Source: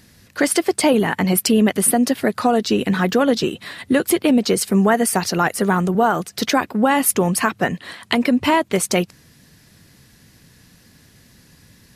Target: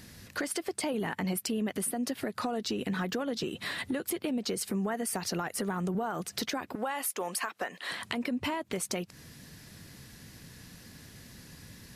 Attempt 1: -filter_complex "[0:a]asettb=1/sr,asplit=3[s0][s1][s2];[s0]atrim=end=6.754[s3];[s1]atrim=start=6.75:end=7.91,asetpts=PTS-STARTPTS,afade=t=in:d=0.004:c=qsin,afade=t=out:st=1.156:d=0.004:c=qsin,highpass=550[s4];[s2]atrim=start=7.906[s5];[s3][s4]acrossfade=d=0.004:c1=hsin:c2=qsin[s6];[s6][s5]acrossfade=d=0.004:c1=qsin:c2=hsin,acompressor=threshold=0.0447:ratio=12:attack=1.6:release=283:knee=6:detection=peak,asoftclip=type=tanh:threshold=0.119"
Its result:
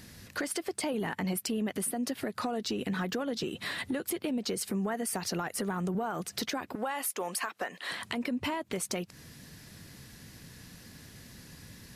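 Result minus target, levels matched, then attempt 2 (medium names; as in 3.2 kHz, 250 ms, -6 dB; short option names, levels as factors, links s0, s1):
saturation: distortion +19 dB
-filter_complex "[0:a]asettb=1/sr,asplit=3[s0][s1][s2];[s0]atrim=end=6.754[s3];[s1]atrim=start=6.75:end=7.91,asetpts=PTS-STARTPTS,afade=t=in:d=0.004:c=qsin,afade=t=out:st=1.156:d=0.004:c=qsin,highpass=550[s4];[s2]atrim=start=7.906[s5];[s3][s4]acrossfade=d=0.004:c1=hsin:c2=qsin[s6];[s6][s5]acrossfade=d=0.004:c1=qsin:c2=hsin,acompressor=threshold=0.0447:ratio=12:attack=1.6:release=283:knee=6:detection=peak,asoftclip=type=tanh:threshold=0.398"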